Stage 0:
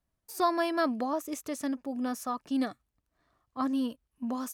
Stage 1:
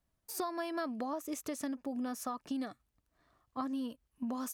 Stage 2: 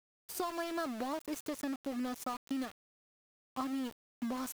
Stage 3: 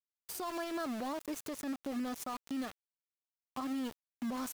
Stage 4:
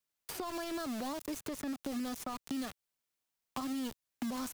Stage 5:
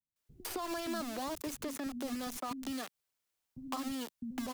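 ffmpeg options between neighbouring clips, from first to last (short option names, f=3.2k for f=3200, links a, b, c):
-af "acompressor=threshold=-35dB:ratio=10,volume=1dB"
-af "aeval=exprs='val(0)*gte(abs(val(0)),0.00891)':c=same"
-af "alimiter=level_in=10dB:limit=-24dB:level=0:latency=1:release=79,volume=-10dB,volume=3dB"
-filter_complex "[0:a]acrossover=split=180|3500[a][b][c];[a]acompressor=threshold=-54dB:ratio=4[d];[b]acompressor=threshold=-48dB:ratio=4[e];[c]acompressor=threshold=-54dB:ratio=4[f];[d][e][f]amix=inputs=3:normalize=0,volume=8.5dB"
-filter_complex "[0:a]acrossover=split=230[a][b];[b]adelay=160[c];[a][c]amix=inputs=2:normalize=0,volume=1.5dB"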